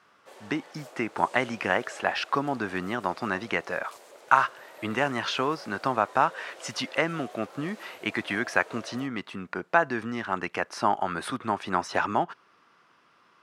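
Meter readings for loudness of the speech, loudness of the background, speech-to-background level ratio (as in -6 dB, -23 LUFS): -28.5 LUFS, -48.0 LUFS, 19.5 dB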